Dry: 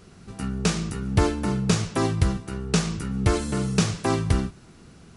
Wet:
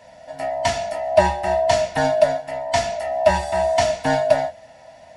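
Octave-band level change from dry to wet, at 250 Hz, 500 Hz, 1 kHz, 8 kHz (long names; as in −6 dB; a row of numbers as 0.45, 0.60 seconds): −7.5, +12.5, +11.5, −0.5 decibels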